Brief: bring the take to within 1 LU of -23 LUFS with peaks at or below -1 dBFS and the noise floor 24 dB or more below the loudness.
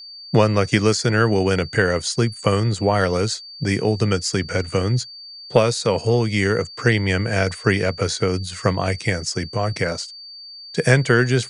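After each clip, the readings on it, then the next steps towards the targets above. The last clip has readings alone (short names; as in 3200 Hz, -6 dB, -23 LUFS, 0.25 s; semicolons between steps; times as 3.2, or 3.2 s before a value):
steady tone 4600 Hz; tone level -36 dBFS; loudness -20.5 LUFS; peak -2.0 dBFS; loudness target -23.0 LUFS
-> notch 4600 Hz, Q 30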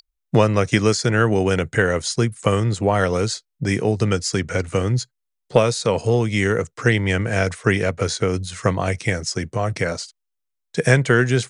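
steady tone none; loudness -20.5 LUFS; peak -2.0 dBFS; loudness target -23.0 LUFS
-> gain -2.5 dB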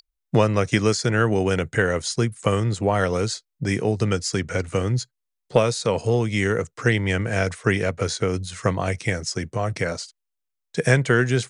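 loudness -23.0 LUFS; peak -4.5 dBFS; noise floor -80 dBFS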